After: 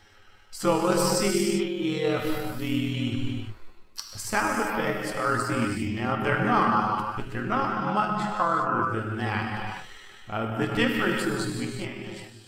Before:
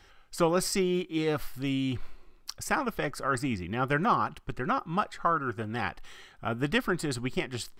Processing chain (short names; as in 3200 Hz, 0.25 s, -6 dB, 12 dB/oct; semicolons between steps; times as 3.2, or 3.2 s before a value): ending faded out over 0.85 s; non-linear reverb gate 0.27 s flat, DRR 0 dB; granular stretch 1.6×, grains 50 ms; gain +2 dB